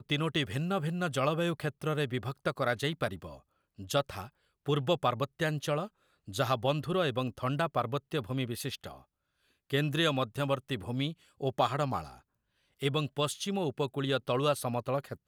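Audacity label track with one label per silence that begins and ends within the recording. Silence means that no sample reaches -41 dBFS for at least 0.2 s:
3.350000	3.790000	silence
4.270000	4.660000	silence
5.870000	6.280000	silence
8.940000	9.700000	silence
11.130000	11.410000	silence
12.080000	12.810000	silence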